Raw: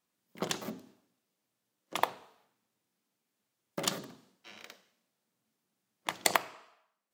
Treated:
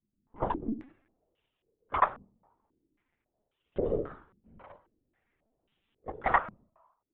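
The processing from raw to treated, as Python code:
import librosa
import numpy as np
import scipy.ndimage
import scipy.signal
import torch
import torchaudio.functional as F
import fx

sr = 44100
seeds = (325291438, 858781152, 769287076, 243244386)

p1 = fx.spec_quant(x, sr, step_db=15)
p2 = fx.level_steps(p1, sr, step_db=21)
p3 = p1 + (p2 * 10.0 ** (-1.0 / 20.0))
p4 = fx.room_flutter(p3, sr, wall_m=4.9, rt60_s=0.32, at=(3.87, 4.57))
p5 = fx.lpc_vocoder(p4, sr, seeds[0], excitation='pitch_kept', order=16)
y = fx.filter_held_lowpass(p5, sr, hz=3.7, low_hz=210.0, high_hz=3000.0)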